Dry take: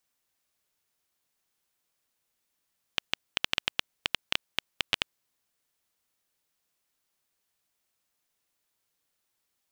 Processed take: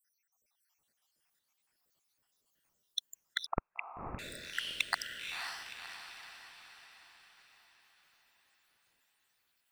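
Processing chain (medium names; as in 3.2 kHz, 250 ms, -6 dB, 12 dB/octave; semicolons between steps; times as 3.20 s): random holes in the spectrogram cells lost 81%; saturation -20 dBFS, distortion -13 dB; echo that smears into a reverb 527 ms, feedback 52%, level -4.5 dB; 3.46–4.19 s: frequency inversion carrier 2.7 kHz; trim +6 dB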